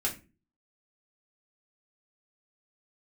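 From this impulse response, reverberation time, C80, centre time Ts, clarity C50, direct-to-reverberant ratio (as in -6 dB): 0.30 s, 18.0 dB, 16 ms, 12.0 dB, -3.5 dB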